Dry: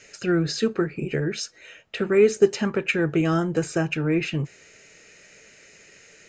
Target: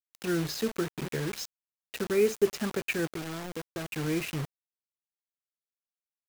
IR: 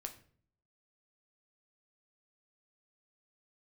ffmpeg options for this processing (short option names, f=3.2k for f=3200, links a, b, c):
-filter_complex "[0:a]asplit=3[a][b][c];[a]afade=t=out:st=3.05:d=0.02[d];[b]acompressor=threshold=-27dB:ratio=12,afade=t=in:st=3.05:d=0.02,afade=t=out:st=3.93:d=0.02[e];[c]afade=t=in:st=3.93:d=0.02[f];[d][e][f]amix=inputs=3:normalize=0,acrusher=bits=4:mix=0:aa=0.000001,volume=-7.5dB"